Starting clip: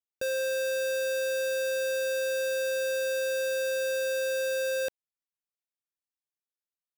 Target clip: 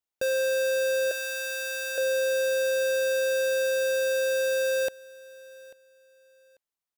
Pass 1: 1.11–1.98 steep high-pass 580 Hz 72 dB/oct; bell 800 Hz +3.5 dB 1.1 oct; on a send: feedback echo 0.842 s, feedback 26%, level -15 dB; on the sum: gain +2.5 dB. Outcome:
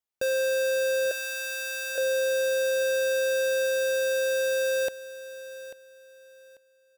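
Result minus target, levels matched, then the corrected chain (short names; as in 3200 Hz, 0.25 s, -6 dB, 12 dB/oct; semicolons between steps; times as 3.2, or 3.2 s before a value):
echo-to-direct +7 dB
1.11–1.98 steep high-pass 580 Hz 72 dB/oct; bell 800 Hz +3.5 dB 1.1 oct; on a send: feedback echo 0.842 s, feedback 26%, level -22 dB; on the sum: gain +2.5 dB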